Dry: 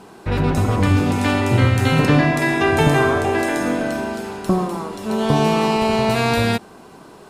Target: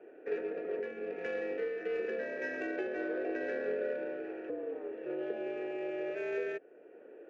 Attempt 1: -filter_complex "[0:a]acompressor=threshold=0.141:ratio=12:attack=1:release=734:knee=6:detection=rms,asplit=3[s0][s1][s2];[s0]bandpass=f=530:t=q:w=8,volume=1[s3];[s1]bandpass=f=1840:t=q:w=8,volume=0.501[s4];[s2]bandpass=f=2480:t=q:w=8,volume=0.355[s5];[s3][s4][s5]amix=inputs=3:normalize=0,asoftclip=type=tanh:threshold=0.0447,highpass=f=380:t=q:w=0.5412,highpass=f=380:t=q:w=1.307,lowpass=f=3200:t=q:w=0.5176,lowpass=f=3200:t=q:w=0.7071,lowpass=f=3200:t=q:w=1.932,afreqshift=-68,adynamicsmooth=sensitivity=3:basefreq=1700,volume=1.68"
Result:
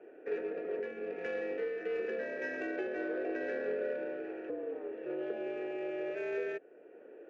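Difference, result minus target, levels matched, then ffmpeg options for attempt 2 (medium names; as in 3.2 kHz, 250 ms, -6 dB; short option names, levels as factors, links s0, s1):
saturation: distortion +12 dB
-filter_complex "[0:a]acompressor=threshold=0.141:ratio=12:attack=1:release=734:knee=6:detection=rms,asplit=3[s0][s1][s2];[s0]bandpass=f=530:t=q:w=8,volume=1[s3];[s1]bandpass=f=1840:t=q:w=8,volume=0.501[s4];[s2]bandpass=f=2480:t=q:w=8,volume=0.355[s5];[s3][s4][s5]amix=inputs=3:normalize=0,asoftclip=type=tanh:threshold=0.0944,highpass=f=380:t=q:w=0.5412,highpass=f=380:t=q:w=1.307,lowpass=f=3200:t=q:w=0.5176,lowpass=f=3200:t=q:w=0.7071,lowpass=f=3200:t=q:w=1.932,afreqshift=-68,adynamicsmooth=sensitivity=3:basefreq=1700,volume=1.68"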